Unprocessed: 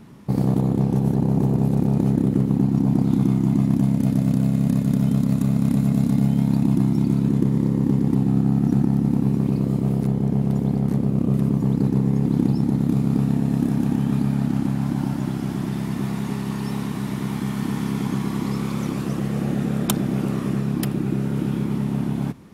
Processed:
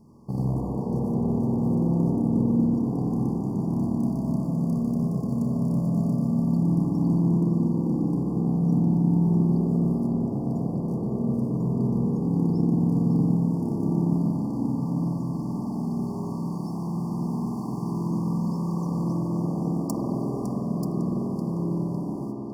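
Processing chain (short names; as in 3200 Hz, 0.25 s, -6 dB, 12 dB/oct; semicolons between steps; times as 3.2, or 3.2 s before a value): median filter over 3 samples; brick-wall FIR band-stop 1200–4400 Hz; on a send: tape echo 0.555 s, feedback 58%, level -7 dB, low-pass 5600 Hz; on the sum: spring tank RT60 3.5 s, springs 47 ms, chirp 60 ms, DRR -4.5 dB; gain -9 dB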